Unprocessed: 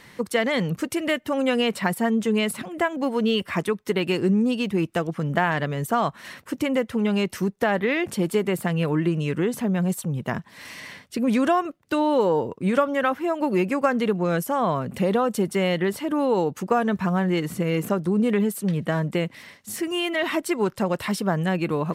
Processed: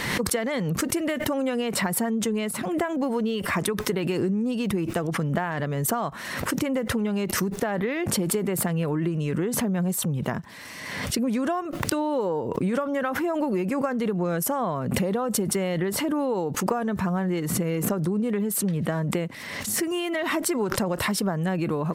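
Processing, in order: compression, threshold -24 dBFS, peak gain reduction 9.5 dB; dynamic bell 2.9 kHz, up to -5 dB, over -47 dBFS, Q 1.1; swell ahead of each attack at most 37 dB/s; trim +1.5 dB

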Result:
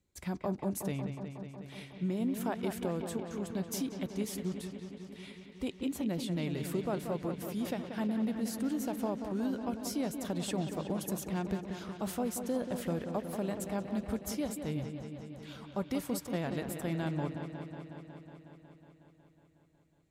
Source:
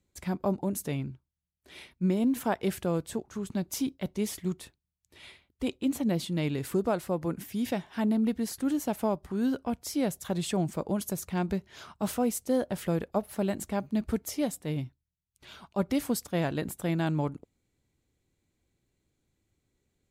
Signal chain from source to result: compression 2:1, threshold -30 dBFS, peak gain reduction 5.5 dB; on a send: feedback echo behind a low-pass 183 ms, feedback 77%, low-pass 3.9 kHz, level -8 dB; on the sum: trim -3 dB

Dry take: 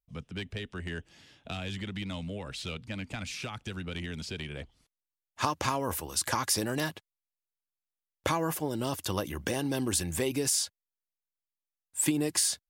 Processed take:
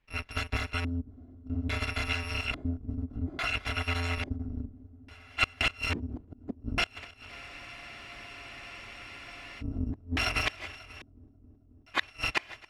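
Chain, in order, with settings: bit-reversed sample order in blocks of 256 samples; in parallel at +3 dB: compression 16:1, threshold -41 dBFS, peak gain reduction 19.5 dB; on the sum: inverted gate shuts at -15 dBFS, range -32 dB; multi-head delay 269 ms, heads first and second, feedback 71%, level -23.5 dB; LFO low-pass square 0.59 Hz 260–2400 Hz; spectral freeze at 7.32 s, 2.27 s; trim +8.5 dB

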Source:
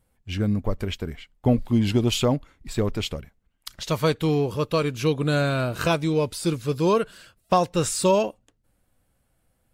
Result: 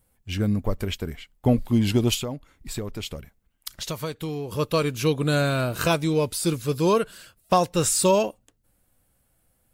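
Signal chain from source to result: treble shelf 8.5 kHz +11 dB; 2.14–4.52 s: compression 4:1, threshold -29 dBFS, peak gain reduction 11 dB

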